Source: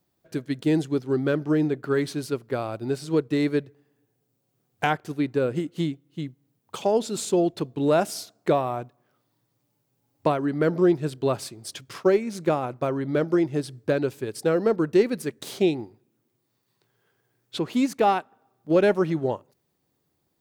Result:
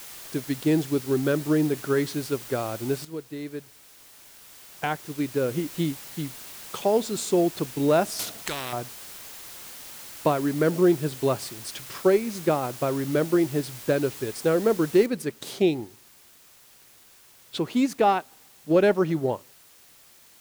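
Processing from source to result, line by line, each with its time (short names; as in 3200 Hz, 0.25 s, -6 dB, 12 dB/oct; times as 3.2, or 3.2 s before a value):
3.05–5.72 fade in quadratic, from -12.5 dB
8.19–8.73 spectral compressor 4:1
15.06 noise floor step -42 dB -54 dB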